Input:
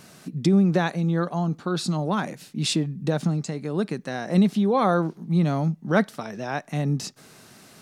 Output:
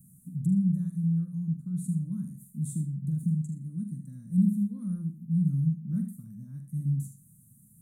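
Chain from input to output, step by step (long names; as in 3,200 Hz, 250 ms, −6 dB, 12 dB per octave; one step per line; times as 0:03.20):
inverse Chebyshev band-stop filter 370–5,400 Hz, stop band 40 dB
flutter between parallel walls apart 7.5 metres, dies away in 0.31 s
convolution reverb, pre-delay 72 ms, DRR 11 dB
level −2.5 dB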